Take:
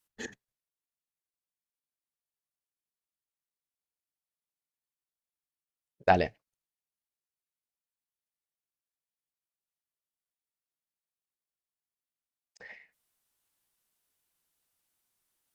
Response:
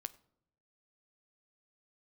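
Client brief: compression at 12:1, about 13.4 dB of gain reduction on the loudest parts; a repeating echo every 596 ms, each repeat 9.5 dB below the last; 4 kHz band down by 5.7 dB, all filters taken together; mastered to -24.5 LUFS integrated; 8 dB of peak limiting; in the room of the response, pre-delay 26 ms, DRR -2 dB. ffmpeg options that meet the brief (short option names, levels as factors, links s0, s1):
-filter_complex "[0:a]equalizer=f=4000:t=o:g=-8,acompressor=threshold=0.0316:ratio=12,alimiter=level_in=1.19:limit=0.0631:level=0:latency=1,volume=0.841,aecho=1:1:596|1192|1788|2384:0.335|0.111|0.0365|0.012,asplit=2[s0][s1];[1:a]atrim=start_sample=2205,adelay=26[s2];[s1][s2]afir=irnorm=-1:irlink=0,volume=1.78[s3];[s0][s3]amix=inputs=2:normalize=0,volume=10"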